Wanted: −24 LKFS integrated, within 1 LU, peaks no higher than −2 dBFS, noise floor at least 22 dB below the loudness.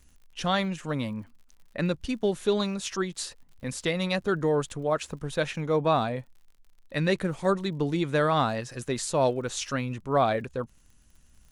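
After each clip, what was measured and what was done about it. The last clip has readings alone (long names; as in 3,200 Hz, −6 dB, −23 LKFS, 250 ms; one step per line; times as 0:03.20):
crackle rate 55 per second; integrated loudness −28.0 LKFS; sample peak −11.5 dBFS; target loudness −24.0 LKFS
→ click removal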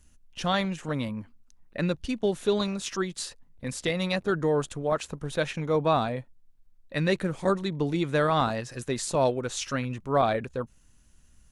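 crackle rate 0.26 per second; integrated loudness −28.5 LKFS; sample peak −11.5 dBFS; target loudness −24.0 LKFS
→ level +4.5 dB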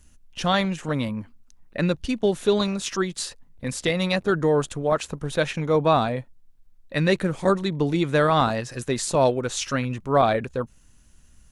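integrated loudness −24.0 LKFS; sample peak −7.0 dBFS; background noise floor −54 dBFS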